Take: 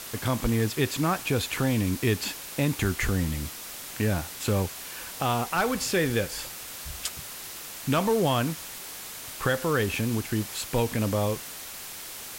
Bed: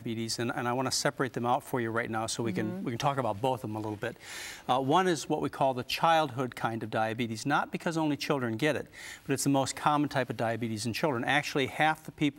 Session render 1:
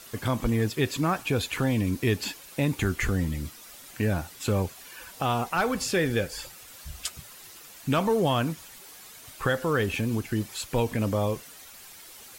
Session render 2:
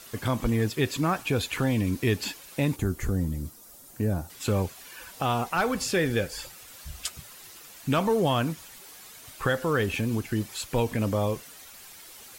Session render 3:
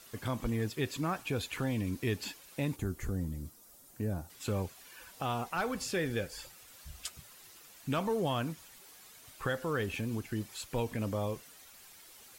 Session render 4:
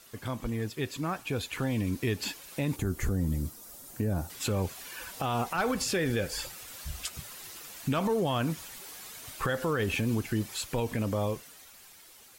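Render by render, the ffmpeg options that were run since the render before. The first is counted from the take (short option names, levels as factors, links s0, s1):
-af "afftdn=nr=10:nf=-40"
-filter_complex "[0:a]asettb=1/sr,asplit=3[s0][s1][s2];[s0]atrim=end=2.764[s3];[s1]atrim=start=2.76:end=4.3,asetpts=PTS-STARTPTS,afade=t=in:d=0.004:c=qsin,afade=t=out:st=1.536:d=0.004:c=qsin,equalizer=f=2500:w=0.61:g=-14[s4];[s2]atrim=start=4.296[s5];[s3][s4]acrossfade=d=0.004:c1=hsin:c2=qsin[s6];[s6][s5]acrossfade=d=0.004:c1=qsin:c2=hsin"
-af "volume=0.398"
-af "dynaudnorm=f=510:g=9:m=3.16,alimiter=limit=0.0944:level=0:latency=1:release=98"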